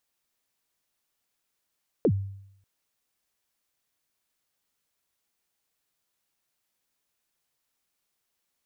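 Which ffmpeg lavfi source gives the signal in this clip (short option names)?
-f lavfi -i "aevalsrc='0.158*pow(10,-3*t/0.74)*sin(2*PI*(540*0.064/log(98/540)*(exp(log(98/540)*min(t,0.064)/0.064)-1)+98*max(t-0.064,0)))':d=0.59:s=44100"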